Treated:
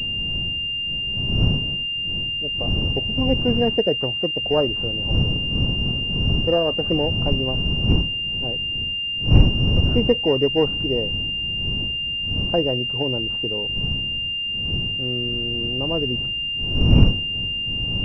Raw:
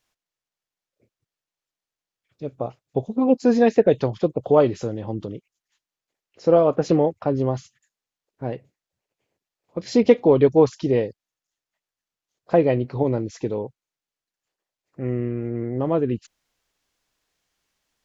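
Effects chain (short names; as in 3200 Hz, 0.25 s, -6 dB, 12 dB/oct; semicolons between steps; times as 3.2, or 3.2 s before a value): wind noise 140 Hz -20 dBFS; pulse-width modulation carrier 2800 Hz; gain -4 dB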